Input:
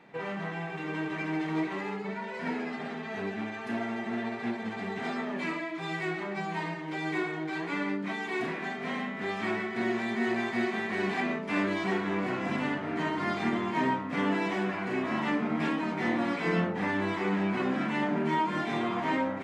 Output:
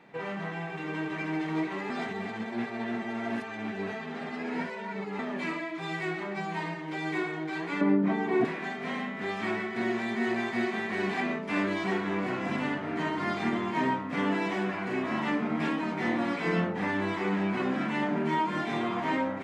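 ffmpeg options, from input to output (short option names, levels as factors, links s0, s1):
-filter_complex "[0:a]asettb=1/sr,asplit=3[s0][s1][s2];[s0]atrim=end=7.814[s3];[s1]atrim=start=7.81:end=8.45,asetpts=PTS-STARTPTS,afade=t=in:d=0.004:c=qsin,afade=t=out:st=0.636:d=0.004:c=qsin,tiltshelf=f=1500:g=10[s4];[s2]atrim=start=8.446[s5];[s3][s4]acrossfade=d=0.004:c1=hsin:c2=qsin[s6];[s6][s5]acrossfade=d=0.004:c1=qsin:c2=hsin,asplit=3[s7][s8][s9];[s7]atrim=end=1.902[s10];[s8]atrim=start=1.898:end=5.192,asetpts=PTS-STARTPTS,areverse[s11];[s9]atrim=start=5.188[s12];[s10][s11]acrossfade=d=0.004:c1=hsin:c2=hsin[s13];[s13][s12]acrossfade=d=0.004:c1=hsin:c2=hsin"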